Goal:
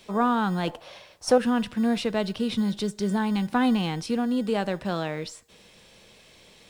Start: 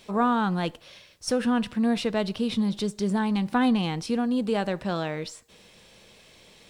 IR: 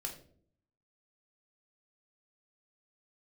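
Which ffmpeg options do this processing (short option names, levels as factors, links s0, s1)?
-filter_complex "[0:a]asettb=1/sr,asplit=3[s0][s1][s2];[s0]atrim=end=0.674[s3];[s1]atrim=start=0.67:end=1.38,asetpts=PTS-STARTPTS,afade=t=in:d=0.004:c=qsin,afade=t=out:st=0.706:d=0.004:c=qsin,equalizer=f=780:w=0.95:g=13[s4];[s2]atrim=start=1.376[s5];[s3][s4]acrossfade=d=0.004:c1=hsin:c2=qsin[s6];[s6][s5]acrossfade=d=0.004:c1=qsin:c2=hsin,acrossover=split=150[s7][s8];[s7]acrusher=samples=26:mix=1:aa=0.000001[s9];[s9][s8]amix=inputs=2:normalize=0"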